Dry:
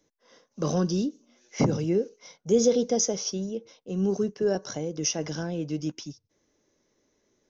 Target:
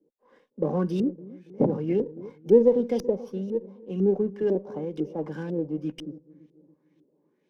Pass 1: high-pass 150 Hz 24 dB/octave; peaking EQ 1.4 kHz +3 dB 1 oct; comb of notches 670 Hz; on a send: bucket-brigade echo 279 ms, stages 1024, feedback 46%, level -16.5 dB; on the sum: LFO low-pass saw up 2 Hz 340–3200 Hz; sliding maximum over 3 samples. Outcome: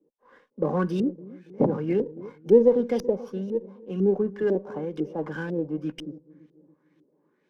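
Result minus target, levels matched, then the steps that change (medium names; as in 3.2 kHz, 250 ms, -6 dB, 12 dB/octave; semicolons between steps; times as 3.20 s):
1 kHz band +3.0 dB
change: peaking EQ 1.4 kHz -7.5 dB 1 oct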